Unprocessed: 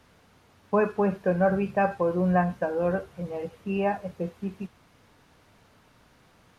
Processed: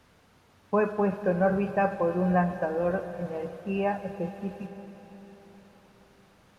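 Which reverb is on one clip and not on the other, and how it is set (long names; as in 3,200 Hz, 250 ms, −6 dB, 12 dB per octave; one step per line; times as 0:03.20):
comb and all-pass reverb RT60 4.8 s, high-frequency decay 0.95×, pre-delay 55 ms, DRR 10.5 dB
level −1.5 dB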